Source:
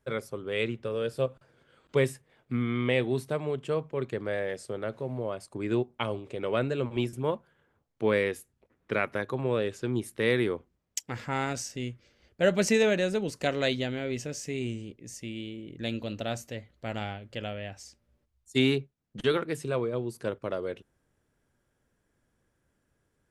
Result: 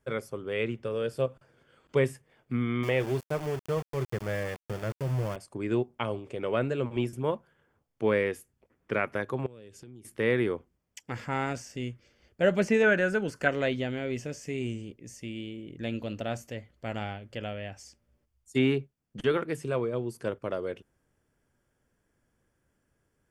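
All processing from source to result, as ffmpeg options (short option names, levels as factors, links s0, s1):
-filter_complex "[0:a]asettb=1/sr,asplit=3[s0][s1][s2];[s0]atrim=end=2.834[s3];[s1]atrim=start=2.83:end=5.36,asetpts=PTS-STARTPTS,afade=t=in:d=0.004:c=qsin,afade=t=out:st=2.526:d=0.004:c=qsin,bandreject=f=240:w=5.8,asubboost=boost=8.5:cutoff=140,aeval=exprs='val(0)*gte(abs(val(0)),0.0178)':c=same[s4];[s2]atrim=start=5.356[s5];[s3][s4]acrossfade=d=0.004:c1=hsin:c2=qsin[s6];[s6][s5]acrossfade=d=0.004:c1=qsin:c2=hsin,asettb=1/sr,asplit=3[s7][s8][s9];[s7]atrim=end=9.464[s10];[s8]atrim=start=9.46:end=10.05,asetpts=PTS-STARTPTS,afade=t=in:d=0.004:c=qsin,afade=t=out:st=0.586:d=0.004:c=qsin,equalizer=f=1100:w=0.5:g=-10,acompressor=threshold=0.00631:ratio=12:attack=3.2:release=140:knee=1:detection=peak[s11];[s9]atrim=start=10.046[s12];[s10][s11]acrossfade=d=0.004:c1=hsin:c2=qsin[s13];[s13][s12]acrossfade=d=0.004:c1=qsin:c2=hsin,asettb=1/sr,asplit=3[s14][s15][s16];[s14]atrim=end=12.834[s17];[s15]atrim=start=12.83:end=13.48,asetpts=PTS-STARTPTS,afade=t=in:d=0.004:c=qsin,afade=t=out:st=0.646:d=0.004:c=qsin,equalizer=f=1500:w=4.4:g=15,bandreject=f=3700:w=29[s18];[s16]atrim=start=13.476[s19];[s17][s18]acrossfade=d=0.004:c1=hsin:c2=qsin[s20];[s20][s19]acrossfade=d=0.004:c1=qsin:c2=hsin,acrossover=split=2900[s21][s22];[s22]acompressor=threshold=0.00631:ratio=4:attack=1:release=60[s23];[s21][s23]amix=inputs=2:normalize=0,bandreject=f=3900:w=6.8"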